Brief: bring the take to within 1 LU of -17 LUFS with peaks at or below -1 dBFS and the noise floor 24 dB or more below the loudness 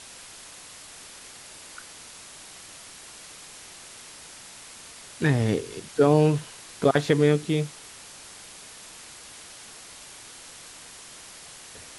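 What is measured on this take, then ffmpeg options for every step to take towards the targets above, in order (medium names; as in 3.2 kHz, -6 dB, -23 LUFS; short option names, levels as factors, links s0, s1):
noise floor -46 dBFS; noise floor target -48 dBFS; loudness -23.5 LUFS; peak level -6.0 dBFS; loudness target -17.0 LUFS
-> -af "afftdn=nr=6:nf=-46"
-af "volume=2.11,alimiter=limit=0.891:level=0:latency=1"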